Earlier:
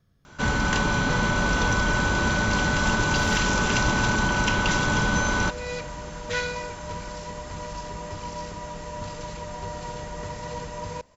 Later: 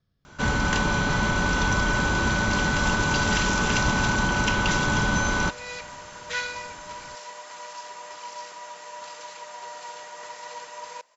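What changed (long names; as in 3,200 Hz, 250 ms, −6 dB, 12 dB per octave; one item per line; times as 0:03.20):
speech: add transistor ladder low-pass 5,700 Hz, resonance 40%
second sound: add high-pass filter 810 Hz 12 dB per octave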